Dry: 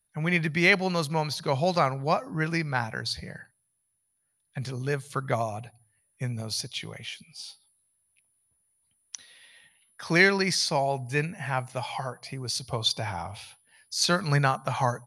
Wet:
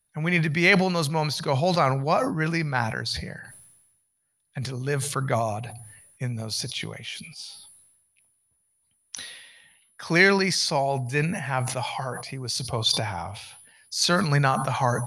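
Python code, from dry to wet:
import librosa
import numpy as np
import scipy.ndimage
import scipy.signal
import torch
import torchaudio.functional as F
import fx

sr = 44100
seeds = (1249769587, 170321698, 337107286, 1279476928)

y = fx.sustainer(x, sr, db_per_s=48.0)
y = y * librosa.db_to_amplitude(1.5)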